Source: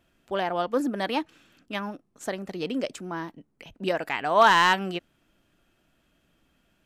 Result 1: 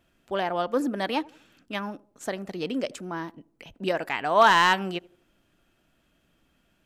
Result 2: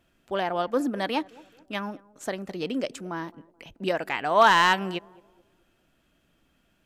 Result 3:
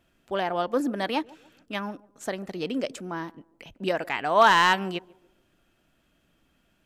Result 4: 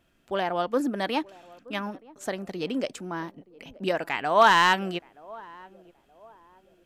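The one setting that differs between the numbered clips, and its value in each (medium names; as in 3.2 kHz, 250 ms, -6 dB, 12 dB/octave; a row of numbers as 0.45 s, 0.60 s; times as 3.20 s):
band-passed feedback delay, time: 82 ms, 215 ms, 143 ms, 924 ms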